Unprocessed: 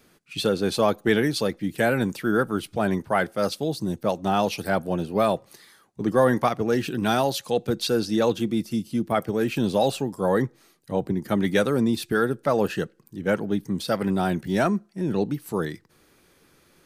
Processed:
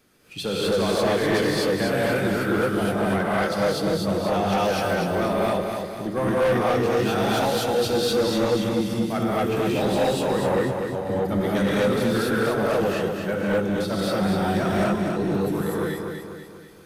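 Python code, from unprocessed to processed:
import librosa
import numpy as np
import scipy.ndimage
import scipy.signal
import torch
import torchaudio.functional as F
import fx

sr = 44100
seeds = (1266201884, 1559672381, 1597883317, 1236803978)

p1 = fx.rev_gated(x, sr, seeds[0], gate_ms=280, shape='rising', drr_db=-6.5)
p2 = 10.0 ** (-14.0 / 20.0) * np.tanh(p1 / 10.0 ** (-14.0 / 20.0))
p3 = p2 + fx.echo_feedback(p2, sr, ms=245, feedback_pct=48, wet_db=-5.5, dry=0)
y = p3 * 10.0 ** (-4.0 / 20.0)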